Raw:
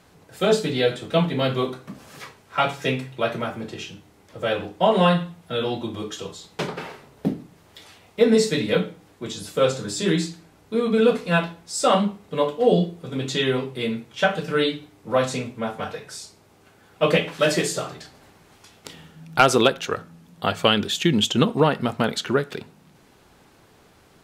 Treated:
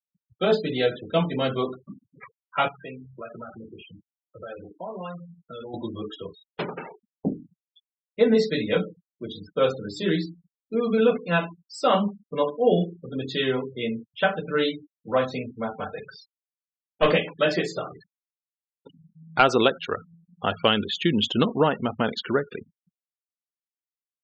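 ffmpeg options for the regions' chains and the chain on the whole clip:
ffmpeg -i in.wav -filter_complex "[0:a]asettb=1/sr,asplit=3[link_01][link_02][link_03];[link_01]atrim=end=2.684[link_04];[link_02]atrim=start=2.68:end=5.74,asetpts=PTS-STARTPTS,afade=type=in:duration=0.004:curve=qsin,afade=type=out:start_time=3.056:duration=0.004:curve=qsin,equalizer=frequency=1300:width_type=o:width=0.27:gain=5,acompressor=threshold=-37dB:ratio=2.5:attack=3.2:release=140:knee=1:detection=peak[link_05];[link_03]atrim=start=5.736[link_06];[link_04][link_05]acrossfade=duration=0.004:curve1=hsin:curve2=qsin[link_07];[link_07][link_06]acrossfade=duration=0.004:curve1=qsin:curve2=hsin,asettb=1/sr,asplit=3[link_08][link_09][link_10];[link_08]atrim=end=15.974[link_11];[link_09]atrim=start=15.97:end=17.13,asetpts=PTS-STARTPTS,afade=type=in:duration=0.004:curve=qsin,afade=type=out:start_time=1.156:duration=0.004:curve=qsin,lowpass=5300,acontrast=23,aeval=exprs='clip(val(0),-1,0.141)':channel_layout=same[link_12];[link_10]atrim=start=17.126[link_13];[link_11][link_12]acrossfade=duration=0.004:curve1=hsin:curve2=qsin[link_14];[link_14][link_13]acrossfade=duration=0.004:curve1=qsin:curve2=hsin,lowpass=4700,afftfilt=real='re*gte(hypot(re,im),0.0316)':imag='im*gte(hypot(re,im),0.0316)':win_size=1024:overlap=0.75,equalizer=frequency=140:width=3:gain=-4.5,volume=-2dB" out.wav

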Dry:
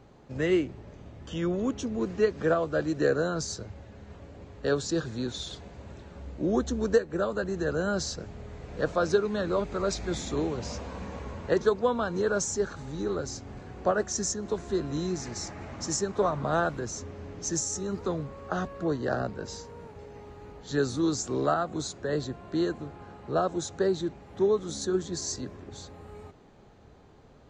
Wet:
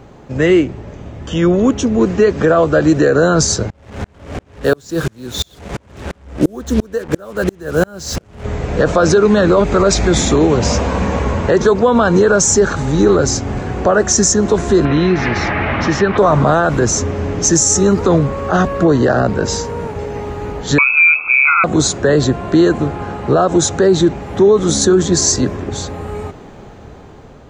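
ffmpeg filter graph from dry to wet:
ffmpeg -i in.wav -filter_complex "[0:a]asettb=1/sr,asplit=3[link_01][link_02][link_03];[link_01]atrim=end=3.704[link_04];[link_02]atrim=start=3.7:end=8.45,asetpts=PTS-STARTPTS,afade=type=in:duration=0.004:curve=qsin,afade=type=out:start_time=4.746:duration=0.004:curve=qsin,acompressor=mode=upward:threshold=-33dB:ratio=2.5:attack=3.2:release=140:knee=2.83:detection=peak,acrusher=bits=6:mix=0:aa=0.5,aeval=exprs='val(0)*pow(10,-37*if(lt(mod(-2.9*n/s,1),2*abs(-2.9)/1000),1-mod(-2.9*n/s,1)/(2*abs(-2.9)/1000),(mod(-2.9*n/s,1)-2*abs(-2.9)/1000)/(1-2*abs(-2.9)/1000))/20)':channel_layout=same[link_05];[link_03]atrim=start=8.446[link_06];[link_04][link_05]acrossfade=duration=0.004:curve1=hsin:curve2=qsin[link_07];[link_07][link_06]acrossfade=duration=0.004:curve1=qsin:curve2=hsin,asettb=1/sr,asplit=3[link_08][link_09][link_10];[link_08]atrim=end=14.854[link_11];[link_09]atrim=start=14.85:end=16.18,asetpts=PTS-STARTPTS,afade=type=in:duration=0.004:curve=qsin,afade=type=out:start_time=1.326:duration=0.004:curve=qsin,lowpass=frequency=3600:width=0.5412,lowpass=frequency=3600:width=1.3066,equalizer=frequency=2200:width=0.68:gain=9.5,acompressor=threshold=-34dB:ratio=2:attack=3.2:release=140:knee=1:detection=peak[link_12];[link_10]atrim=start=16.176[link_13];[link_11][link_12]acrossfade=duration=0.004:curve1=hsin:curve2=qsin[link_14];[link_14][link_13]acrossfade=duration=0.004:curve1=qsin:curve2=hsin,asettb=1/sr,asplit=3[link_15][link_16][link_17];[link_15]atrim=end=20.784[link_18];[link_16]atrim=start=20.78:end=21.64,asetpts=PTS-STARTPTS,afade=type=in:duration=0.004:curve=qsin,afade=type=out:start_time=0.856:duration=0.004:curve=qsin,lowpass=frequency=2300:width_type=q:width=0.5098,lowpass=frequency=2300:width_type=q:width=0.6013,lowpass=frequency=2300:width_type=q:width=0.9,lowpass=frequency=2300:width_type=q:width=2.563,afreqshift=-2700,asuperstop=centerf=1800:order=8:qfactor=2.3[link_19];[link_17]atrim=start=21.636[link_20];[link_18][link_19]acrossfade=duration=0.004:curve1=hsin:curve2=qsin[link_21];[link_21][link_20]acrossfade=duration=0.004:curve1=qsin:curve2=hsin,equalizer=frequency=4300:width_type=o:width=0.56:gain=-4,dynaudnorm=framelen=970:gausssize=5:maxgain=7dB,alimiter=level_in=17dB:limit=-1dB:release=50:level=0:latency=1,volume=-2dB" out.wav

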